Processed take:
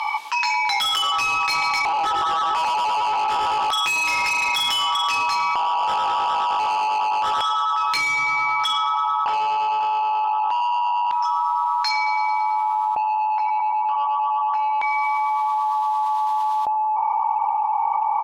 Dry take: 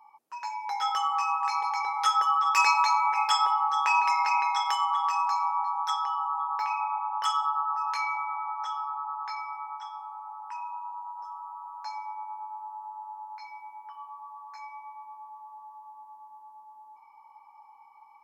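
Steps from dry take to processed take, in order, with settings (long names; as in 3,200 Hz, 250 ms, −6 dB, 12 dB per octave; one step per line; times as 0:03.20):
0:05.42–0:05.83: low shelf with overshoot 640 Hz +6 dB, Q 3
repeating echo 110 ms, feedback 60%, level −15.5 dB
automatic gain control gain up to 12.5 dB
auto-filter band-pass square 0.27 Hz 720–3,400 Hz
in parallel at −1 dB: brickwall limiter −20.5 dBFS, peak gain reduction 9.5 dB
0:00.96–0:01.48: on the sum: noise gate with hold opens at −15 dBFS
0:09.23–0:10.25: double-tracking delay 44 ms −5.5 dB
on a send at −16.5 dB: convolution reverb RT60 1.1 s, pre-delay 3 ms
on the sum: soft clipping −23 dBFS, distortion −8 dB
envelope flattener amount 100%
level +3 dB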